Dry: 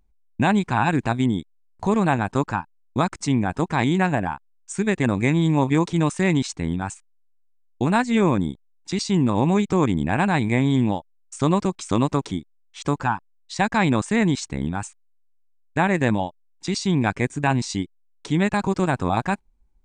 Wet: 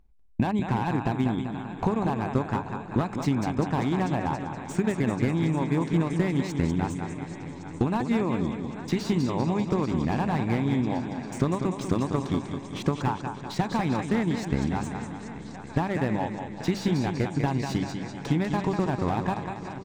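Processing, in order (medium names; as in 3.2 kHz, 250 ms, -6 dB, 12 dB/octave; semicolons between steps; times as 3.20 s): compression 16:1, threshold -24 dBFS, peak gain reduction 12 dB; de-hum 97.94 Hz, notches 3; transient shaper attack +2 dB, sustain -3 dB; treble shelf 5 kHz -11 dB; shuffle delay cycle 1113 ms, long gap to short 3:1, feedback 60%, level -16 dB; dynamic bell 1.5 kHz, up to -5 dB, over -47 dBFS, Q 5.4; on a send: feedback delay 195 ms, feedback 52%, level -8 dB; on the sum: slew-rate limiter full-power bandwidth 45 Hz; trim +3 dB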